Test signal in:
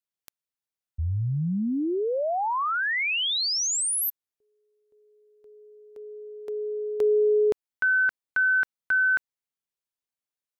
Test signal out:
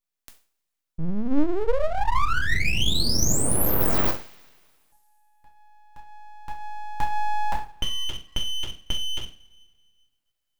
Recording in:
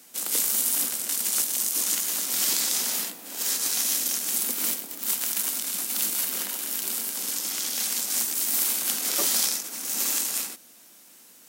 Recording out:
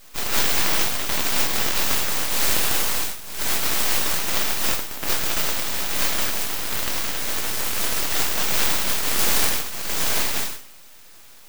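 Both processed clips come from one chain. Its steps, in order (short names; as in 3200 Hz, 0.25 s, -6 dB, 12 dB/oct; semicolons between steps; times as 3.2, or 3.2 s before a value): two-slope reverb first 0.37 s, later 1.9 s, from -27 dB, DRR -1.5 dB; full-wave rectifier; gain +3 dB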